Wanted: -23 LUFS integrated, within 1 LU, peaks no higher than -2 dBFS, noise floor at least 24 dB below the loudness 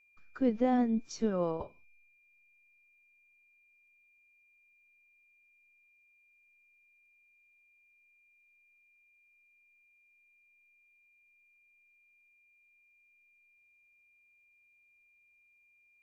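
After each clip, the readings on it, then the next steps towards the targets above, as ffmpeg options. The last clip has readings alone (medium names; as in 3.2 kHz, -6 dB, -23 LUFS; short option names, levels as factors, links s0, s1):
steady tone 2.4 kHz; tone level -65 dBFS; loudness -31.5 LUFS; peak level -18.0 dBFS; loudness target -23.0 LUFS
-> -af "bandreject=f=2400:w=30"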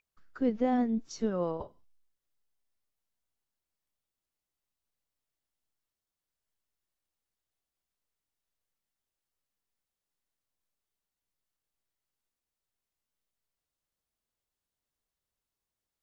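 steady tone not found; loudness -31.5 LUFS; peak level -18.0 dBFS; loudness target -23.0 LUFS
-> -af "volume=2.66"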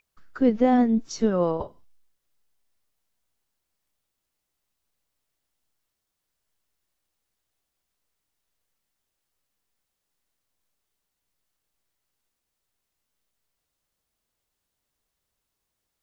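loudness -23.0 LUFS; peak level -9.5 dBFS; noise floor -82 dBFS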